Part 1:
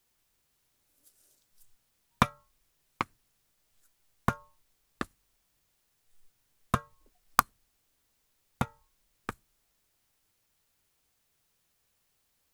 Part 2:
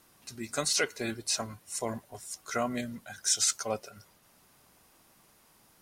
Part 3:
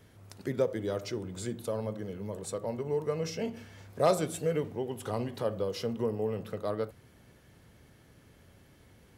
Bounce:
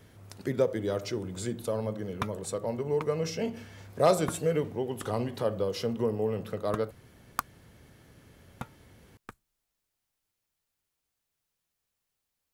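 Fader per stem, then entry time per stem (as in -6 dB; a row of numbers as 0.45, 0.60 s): -9.0 dB, off, +2.5 dB; 0.00 s, off, 0.00 s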